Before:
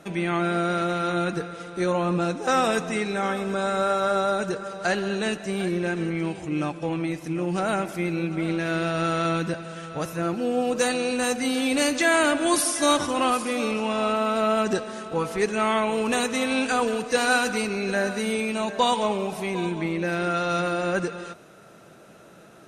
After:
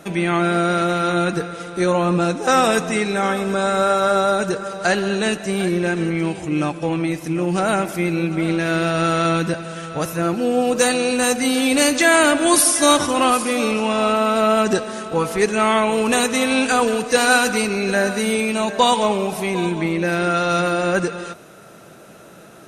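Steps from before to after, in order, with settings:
high-shelf EQ 11,000 Hz +9.5 dB
level +6 dB

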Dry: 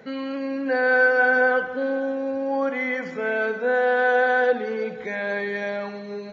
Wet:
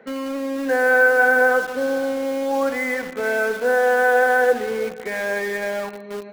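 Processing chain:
three-way crossover with the lows and the highs turned down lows −17 dB, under 190 Hz, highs −15 dB, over 3,000 Hz
in parallel at −7 dB: bit reduction 5 bits

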